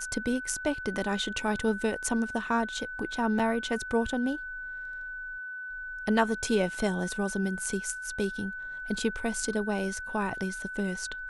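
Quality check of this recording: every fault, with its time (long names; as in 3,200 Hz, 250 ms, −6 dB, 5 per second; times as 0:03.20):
whistle 1,500 Hz −36 dBFS
0:03.39–0:03.40: drop-out 5.3 ms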